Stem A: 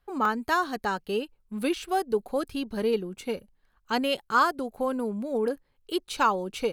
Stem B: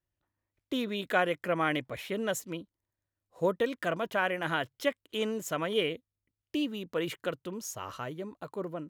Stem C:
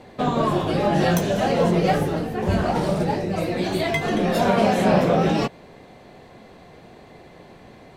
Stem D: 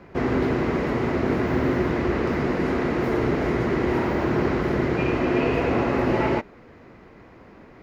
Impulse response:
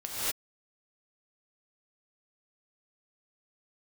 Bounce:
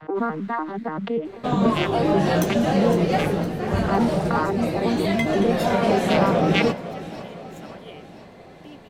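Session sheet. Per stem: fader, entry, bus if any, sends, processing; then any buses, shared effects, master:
+3.0 dB, 0.00 s, no send, no echo send, vocoder on a broken chord major triad, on D#3, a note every 97 ms; low-pass 1.9 kHz 12 dB/octave; swell ahead of each attack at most 32 dB/s
-14.5 dB, 2.10 s, no send, no echo send, none
-2.0 dB, 1.25 s, no send, echo send -13.5 dB, none
-16.5 dB, 0.00 s, no send, no echo send, LFO high-pass saw up 3.4 Hz 780–2400 Hz; half-wave rectifier; auto duck -10 dB, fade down 1.55 s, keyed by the first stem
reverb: none
echo: feedback delay 510 ms, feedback 55%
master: none

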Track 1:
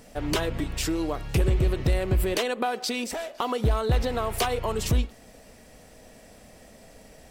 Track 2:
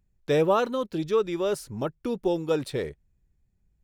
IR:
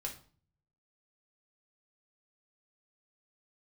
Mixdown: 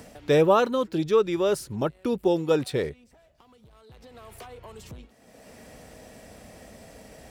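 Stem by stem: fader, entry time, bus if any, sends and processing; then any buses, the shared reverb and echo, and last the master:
-14.5 dB, 0.00 s, no send, saturation -21 dBFS, distortion -14 dB; three bands compressed up and down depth 100%; auto duck -14 dB, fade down 0.65 s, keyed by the second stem
+3.0 dB, 0.00 s, no send, none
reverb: none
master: high-pass 51 Hz

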